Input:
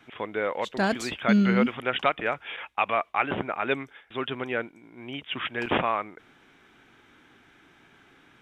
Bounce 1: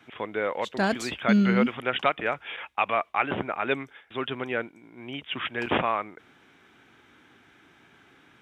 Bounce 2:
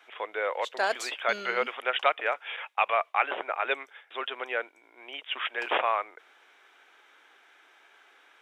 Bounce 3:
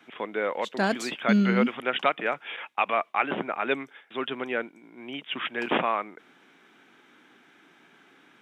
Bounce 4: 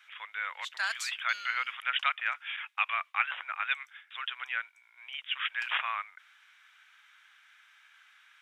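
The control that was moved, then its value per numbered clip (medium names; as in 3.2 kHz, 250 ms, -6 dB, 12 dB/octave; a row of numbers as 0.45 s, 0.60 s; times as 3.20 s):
high-pass, cutoff frequency: 51 Hz, 480 Hz, 170 Hz, 1.3 kHz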